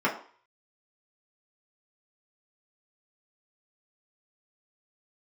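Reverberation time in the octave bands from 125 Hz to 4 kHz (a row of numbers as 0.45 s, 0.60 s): 0.25 s, 0.40 s, 0.40 s, 0.50 s, 0.45 s, 0.45 s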